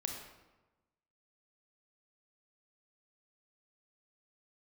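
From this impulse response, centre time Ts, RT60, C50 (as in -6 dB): 44 ms, 1.1 s, 3.5 dB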